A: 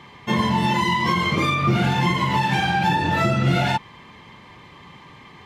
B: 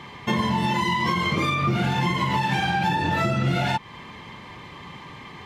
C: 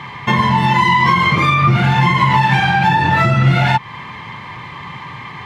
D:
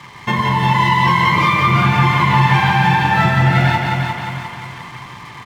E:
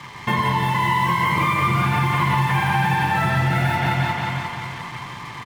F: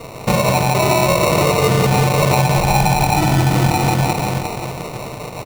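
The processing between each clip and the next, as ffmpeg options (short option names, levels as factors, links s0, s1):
-af "acompressor=threshold=0.0447:ratio=2.5,volume=1.58"
-af "equalizer=f=125:t=o:w=1:g=11,equalizer=f=1000:t=o:w=1:g=9,equalizer=f=2000:t=o:w=1:g=8,equalizer=f=4000:t=o:w=1:g=3,volume=1.19"
-filter_complex "[0:a]asplit=2[s0][s1];[s1]aecho=0:1:353|706|1059|1412|1765|2118:0.562|0.253|0.114|0.0512|0.0231|0.0104[s2];[s0][s2]amix=inputs=2:normalize=0,aeval=exprs='sgn(val(0))*max(abs(val(0))-0.0158,0)':c=same,asplit=2[s3][s4];[s4]aecho=0:1:175:0.596[s5];[s3][s5]amix=inputs=2:normalize=0,volume=0.708"
-filter_complex "[0:a]acrossover=split=3600[s0][s1];[s0]alimiter=limit=0.282:level=0:latency=1:release=110[s2];[s1]aeval=exprs='0.0133*(abs(mod(val(0)/0.0133+3,4)-2)-1)':c=same[s3];[s2][s3]amix=inputs=2:normalize=0,asplit=2[s4][s5];[s5]adelay=43,volume=0.251[s6];[s4][s6]amix=inputs=2:normalize=0"
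-af "acrusher=samples=27:mix=1:aa=0.000001,volume=1.78"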